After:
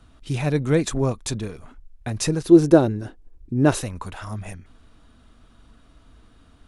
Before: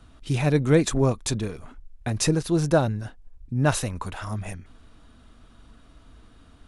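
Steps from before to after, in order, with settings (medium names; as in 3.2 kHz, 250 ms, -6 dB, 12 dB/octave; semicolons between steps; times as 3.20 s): 2.44–3.81 s: peaking EQ 350 Hz +14 dB 0.93 oct; trim -1 dB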